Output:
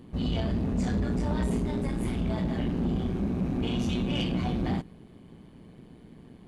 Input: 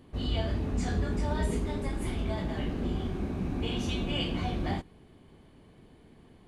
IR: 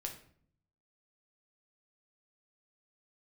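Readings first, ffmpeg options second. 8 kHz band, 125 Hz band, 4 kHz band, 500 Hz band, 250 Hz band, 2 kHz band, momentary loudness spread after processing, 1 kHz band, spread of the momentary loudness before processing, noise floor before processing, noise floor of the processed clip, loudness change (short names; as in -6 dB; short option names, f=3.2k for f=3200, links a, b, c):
-1.5 dB, +3.0 dB, -1.5 dB, +1.0 dB, +5.5 dB, -1.0 dB, 2 LU, 0.0 dB, 3 LU, -57 dBFS, -52 dBFS, +3.0 dB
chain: -af "tremolo=f=120:d=0.621,equalizer=f=190:w=0.96:g=8,asoftclip=type=tanh:threshold=-25.5dB,volume=4dB"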